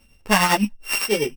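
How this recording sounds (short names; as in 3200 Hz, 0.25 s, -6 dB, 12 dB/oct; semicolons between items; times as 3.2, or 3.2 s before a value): a buzz of ramps at a fixed pitch in blocks of 16 samples; tremolo triangle 9.9 Hz, depth 70%; a shimmering, thickened sound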